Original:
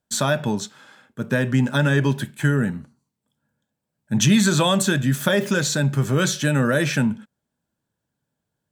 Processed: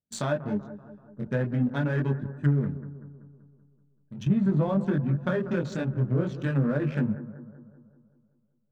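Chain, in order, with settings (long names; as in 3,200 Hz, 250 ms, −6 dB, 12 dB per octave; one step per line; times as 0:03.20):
adaptive Wiener filter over 41 samples
multi-voice chorus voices 2, 0.42 Hz, delay 22 ms, depth 2.3 ms
treble cut that deepens with the level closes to 810 Hz, closed at −17 dBFS
in parallel at −5 dB: slack as between gear wheels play −29.5 dBFS
0:02.75–0:04.30: on the sum: output level in coarse steps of 16 dB
on a send: bucket-brigade delay 191 ms, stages 2,048, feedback 55%, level −14 dB
on the sum: level −6.5 dB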